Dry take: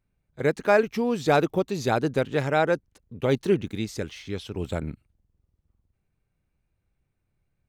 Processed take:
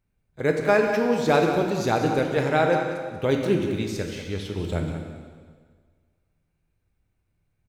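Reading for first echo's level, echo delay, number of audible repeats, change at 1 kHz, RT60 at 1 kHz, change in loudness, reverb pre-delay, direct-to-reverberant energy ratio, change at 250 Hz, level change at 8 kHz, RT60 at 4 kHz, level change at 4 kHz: −9.5 dB, 187 ms, 1, +2.5 dB, 1.6 s, +2.0 dB, 5 ms, 2.0 dB, +2.5 dB, +2.0 dB, 1.6 s, +2.0 dB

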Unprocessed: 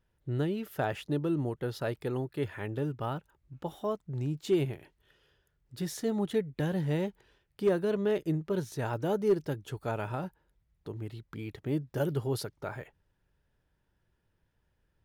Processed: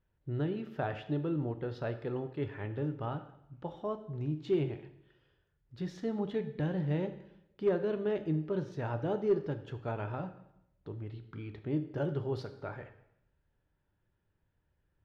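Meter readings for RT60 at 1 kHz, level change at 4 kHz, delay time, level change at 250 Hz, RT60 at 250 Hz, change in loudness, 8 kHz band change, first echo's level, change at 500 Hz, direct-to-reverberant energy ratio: 0.80 s, −7.5 dB, no echo audible, −2.5 dB, 0.85 s, −2.5 dB, below −15 dB, no echo audible, −3.0 dB, 8.0 dB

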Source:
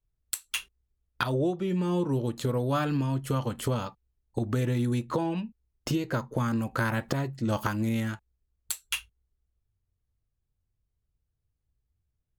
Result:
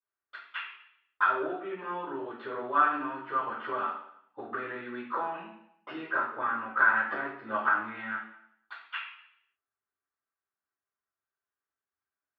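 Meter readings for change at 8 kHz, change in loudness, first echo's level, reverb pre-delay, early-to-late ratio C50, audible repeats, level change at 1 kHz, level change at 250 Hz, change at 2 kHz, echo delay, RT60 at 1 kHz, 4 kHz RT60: below −40 dB, −1.0 dB, no echo audible, 3 ms, 3.5 dB, no echo audible, +6.0 dB, −12.5 dB, +8.5 dB, no echo audible, 0.70 s, 0.70 s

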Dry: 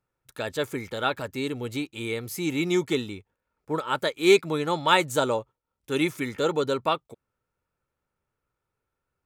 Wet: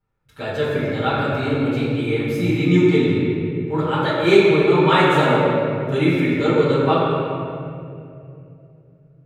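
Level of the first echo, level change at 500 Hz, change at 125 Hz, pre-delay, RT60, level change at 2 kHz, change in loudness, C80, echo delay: no echo audible, +8.5 dB, +15.5 dB, 5 ms, 2.5 s, +6.5 dB, +8.0 dB, −1.0 dB, no echo audible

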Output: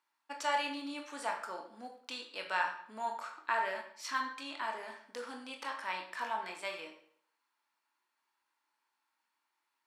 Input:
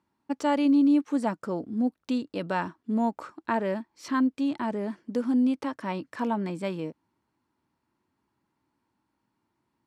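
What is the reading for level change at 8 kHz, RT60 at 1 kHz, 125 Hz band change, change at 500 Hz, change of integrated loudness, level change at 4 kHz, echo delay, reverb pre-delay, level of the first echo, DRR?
can't be measured, 0.60 s, below −25 dB, −11.5 dB, −10.0 dB, +2.0 dB, no echo audible, 22 ms, no echo audible, 1.5 dB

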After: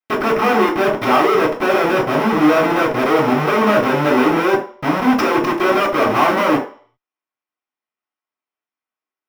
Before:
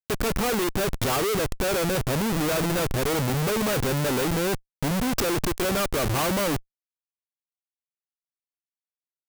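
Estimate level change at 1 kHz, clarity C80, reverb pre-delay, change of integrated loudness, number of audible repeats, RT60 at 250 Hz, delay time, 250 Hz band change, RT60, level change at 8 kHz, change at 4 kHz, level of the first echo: +14.0 dB, 13.5 dB, 3 ms, +9.5 dB, no echo audible, 0.35 s, no echo audible, +10.5 dB, 0.45 s, −7.0 dB, +3.0 dB, no echo audible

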